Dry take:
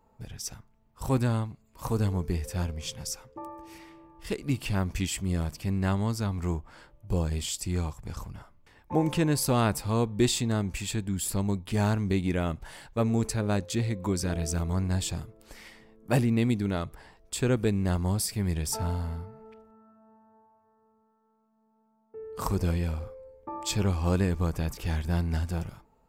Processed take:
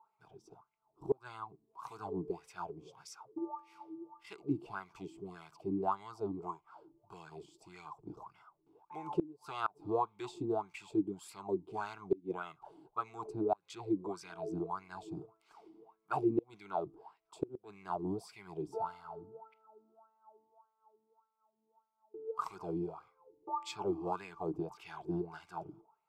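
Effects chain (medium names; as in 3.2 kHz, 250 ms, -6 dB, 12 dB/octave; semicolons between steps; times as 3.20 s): static phaser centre 360 Hz, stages 8; wah-wah 1.7 Hz 290–2100 Hz, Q 7.5; inverted gate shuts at -30 dBFS, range -28 dB; trim +11 dB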